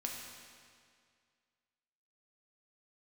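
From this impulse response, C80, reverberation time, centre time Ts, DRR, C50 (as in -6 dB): 3.5 dB, 2.1 s, 83 ms, -1.0 dB, 2.0 dB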